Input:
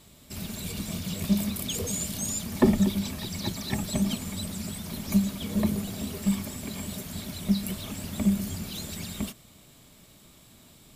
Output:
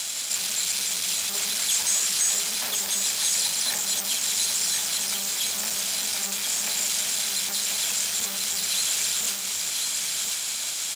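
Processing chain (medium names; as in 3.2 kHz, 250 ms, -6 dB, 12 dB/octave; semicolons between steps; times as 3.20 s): comb filter that takes the minimum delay 1.2 ms; bass shelf 80 Hz -7 dB; doubling 47 ms -12 dB; in parallel at 0 dB: gain riding; on the sum: valve stage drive 32 dB, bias 0.35; careless resampling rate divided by 3×, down none, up zero stuff; peak limiter -30 dBFS, peak gain reduction 11 dB; frequency weighting ITU-R 468; delay 1038 ms -3.5 dB; trim +8.5 dB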